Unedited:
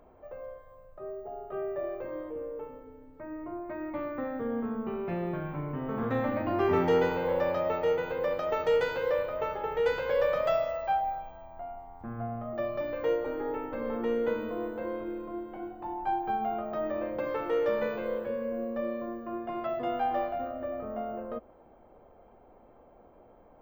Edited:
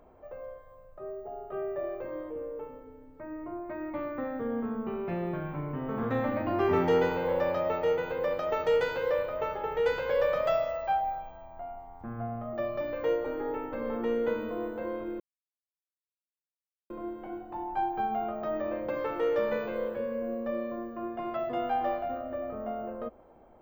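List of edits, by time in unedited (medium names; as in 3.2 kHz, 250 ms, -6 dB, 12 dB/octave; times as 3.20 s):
15.20 s: insert silence 1.70 s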